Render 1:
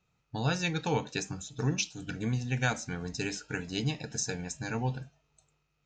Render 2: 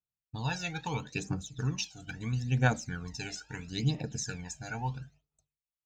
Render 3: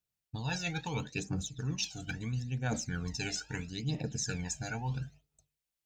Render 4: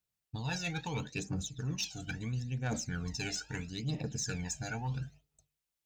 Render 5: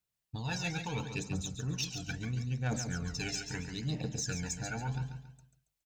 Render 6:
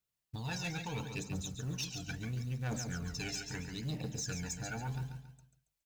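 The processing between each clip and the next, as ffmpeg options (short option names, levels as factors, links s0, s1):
-af "aphaser=in_gain=1:out_gain=1:delay=1.5:decay=0.72:speed=0.75:type=triangular,agate=range=0.0224:threshold=0.00355:ratio=3:detection=peak,volume=0.531"
-af "equalizer=f=1100:w=1.4:g=-4.5,areverse,acompressor=threshold=0.0126:ratio=6,areverse,volume=2"
-af "asoftclip=type=tanh:threshold=0.0501"
-af "aecho=1:1:139|278|417|556:0.398|0.139|0.0488|0.0171"
-af "acrusher=bits=6:mode=log:mix=0:aa=0.000001,asoftclip=type=tanh:threshold=0.0355,volume=0.841"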